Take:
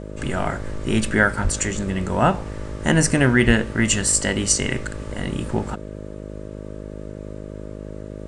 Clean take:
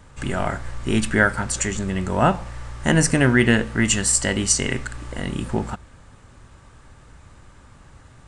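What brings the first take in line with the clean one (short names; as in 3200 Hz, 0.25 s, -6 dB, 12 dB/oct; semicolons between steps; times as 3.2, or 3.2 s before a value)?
de-hum 51.6 Hz, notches 12; de-plosive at 1.43/3.46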